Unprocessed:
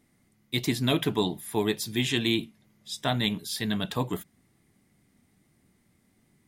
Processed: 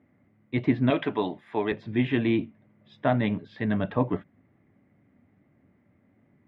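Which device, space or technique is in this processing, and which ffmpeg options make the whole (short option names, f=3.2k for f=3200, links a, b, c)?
bass cabinet: -filter_complex "[0:a]highpass=73,equalizer=f=98:t=q:w=4:g=6,equalizer=f=270:t=q:w=4:g=5,equalizer=f=580:t=q:w=4:g=8,lowpass=f=2.2k:w=0.5412,lowpass=f=2.2k:w=1.3066,asettb=1/sr,asplit=3[a][b][c];[a]atrim=end=0.904[d];[b]atrim=start=0.9:end=1.72,asetpts=PTS-STARTPTS,afade=t=in:d=0.004:c=qsin,afade=t=out:st=0.816:d=0.004:c=qsin,aemphasis=mode=production:type=riaa[e];[c]atrim=start=1.716[f];[d][e]acrossfade=d=0.004:c1=hsin:c2=qsin[g];[g][f]acrossfade=d=0.004:c1=qsin:c2=hsin,volume=1.5dB"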